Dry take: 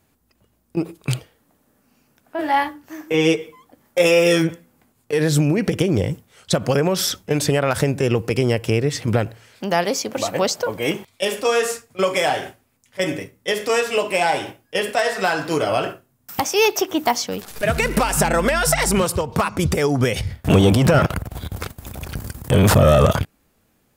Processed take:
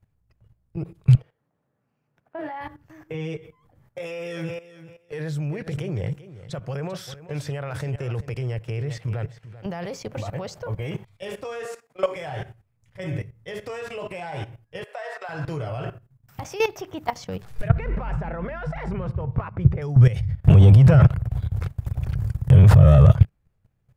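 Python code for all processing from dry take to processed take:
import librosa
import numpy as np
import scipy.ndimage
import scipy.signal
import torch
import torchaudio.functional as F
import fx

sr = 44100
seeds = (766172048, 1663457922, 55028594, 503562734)

y = fx.chain(x, sr, fx.highpass(hz=210.0, slope=12),
    fx.high_shelf(hz=3700.0, db=-10.0), at=(1.16, 2.61))
y = fx.chain(y, sr, fx.highpass(hz=420.0, slope=6),
    fx.echo_feedback(ms=391, feedback_pct=15, wet_db=-13.0), at=(3.98, 9.66))
y = fx.chain(y, sr, fx.highpass(hz=250.0, slope=24),
    fx.peak_eq(hz=710.0, db=3.5, octaves=1.2), at=(11.65, 12.16))
y = fx.chain(y, sr, fx.highpass(hz=520.0, slope=24),
    fx.high_shelf(hz=2800.0, db=-6.5), at=(14.83, 15.29))
y = fx.chain(y, sr, fx.lowpass(hz=2000.0, slope=12),
    fx.hum_notches(base_hz=50, count=7), at=(17.68, 19.82))
y = fx.graphic_eq_10(y, sr, hz=(125, 250, 2000), db=(12, -12, 3))
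y = fx.level_steps(y, sr, step_db=15)
y = fx.tilt_eq(y, sr, slope=-3.0)
y = y * librosa.db_to_amplitude(-4.0)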